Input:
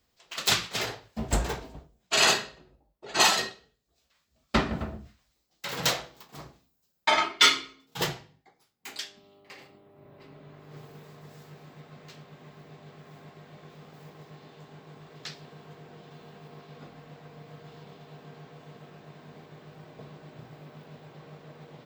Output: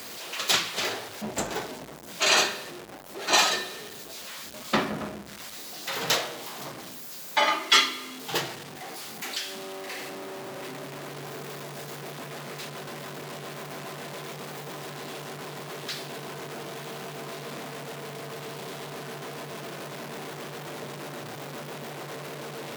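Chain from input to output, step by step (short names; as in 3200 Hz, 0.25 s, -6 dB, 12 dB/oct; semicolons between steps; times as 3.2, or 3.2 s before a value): zero-crossing step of -33.5 dBFS; HPF 220 Hz 12 dB/oct; in parallel at -1 dB: vocal rider within 3 dB 2 s; on the sum: speed mistake 25 fps video run at 24 fps; gain -6 dB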